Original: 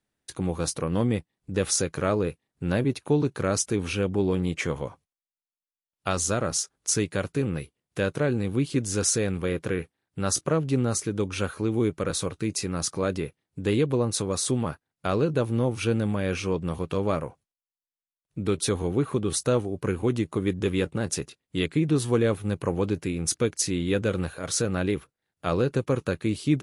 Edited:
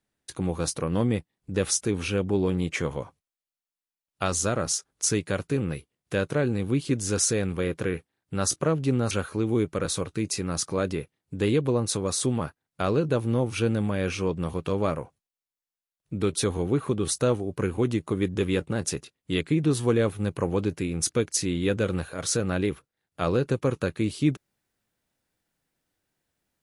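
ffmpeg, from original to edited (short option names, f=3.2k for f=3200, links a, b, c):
-filter_complex "[0:a]asplit=3[a][b][c];[a]atrim=end=1.752[d];[b]atrim=start=3.598:end=10.962[e];[c]atrim=start=11.358[f];[d][e]acrossfade=d=0.004:c1=hsin:c2=hsin[g];[g][f]acrossfade=d=0.004:c1=hsin:c2=hsin"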